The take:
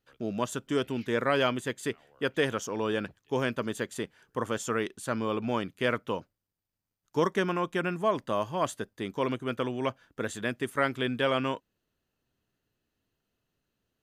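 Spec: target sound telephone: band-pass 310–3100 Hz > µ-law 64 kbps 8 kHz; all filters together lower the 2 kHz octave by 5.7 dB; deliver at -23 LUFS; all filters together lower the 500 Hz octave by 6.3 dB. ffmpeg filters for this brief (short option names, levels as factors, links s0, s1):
-af "highpass=310,lowpass=3100,equalizer=f=500:t=o:g=-6.5,equalizer=f=2000:t=o:g=-6.5,volume=4.73" -ar 8000 -c:a pcm_mulaw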